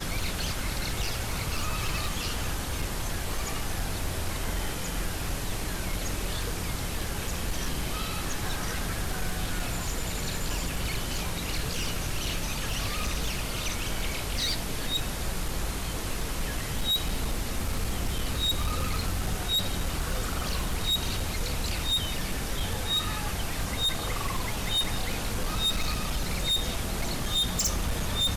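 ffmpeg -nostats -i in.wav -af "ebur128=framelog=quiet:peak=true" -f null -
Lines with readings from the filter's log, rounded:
Integrated loudness:
  I:         -30.3 LUFS
  Threshold: -40.3 LUFS
Loudness range:
  LRA:         3.7 LU
  Threshold: -50.4 LUFS
  LRA low:   -32.4 LUFS
  LRA high:  -28.7 LUFS
True peak:
  Peak:      -19.6 dBFS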